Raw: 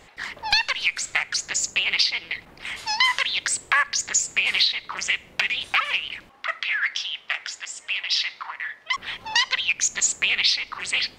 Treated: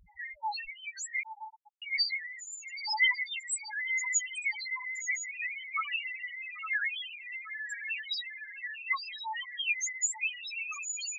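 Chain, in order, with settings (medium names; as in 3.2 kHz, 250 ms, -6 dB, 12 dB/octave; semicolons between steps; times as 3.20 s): dynamic bell 620 Hz, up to -4 dB, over -41 dBFS, Q 1.4; trance gate "xxxx.x.x..." 172 bpm -12 dB; on a send: echo that smears into a reverb 966 ms, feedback 62%, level -4 dB; on the sum: loudest bins only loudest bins 1; 1.23–1.82 s: brick-wall FIR low-pass 1.1 kHz; trim +5.5 dB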